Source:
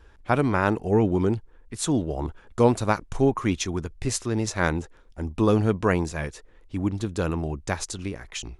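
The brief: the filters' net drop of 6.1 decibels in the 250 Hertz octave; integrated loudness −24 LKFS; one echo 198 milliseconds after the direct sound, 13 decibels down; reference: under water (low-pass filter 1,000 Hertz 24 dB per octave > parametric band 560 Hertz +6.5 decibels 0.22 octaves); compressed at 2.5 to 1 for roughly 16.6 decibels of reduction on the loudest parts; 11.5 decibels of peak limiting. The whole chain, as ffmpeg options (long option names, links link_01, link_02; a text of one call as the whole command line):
ffmpeg -i in.wav -af "equalizer=frequency=250:width_type=o:gain=-8.5,acompressor=threshold=-43dB:ratio=2.5,alimiter=level_in=9.5dB:limit=-24dB:level=0:latency=1,volume=-9.5dB,lowpass=frequency=1000:width=0.5412,lowpass=frequency=1000:width=1.3066,equalizer=frequency=560:width_type=o:width=0.22:gain=6.5,aecho=1:1:198:0.224,volume=21.5dB" out.wav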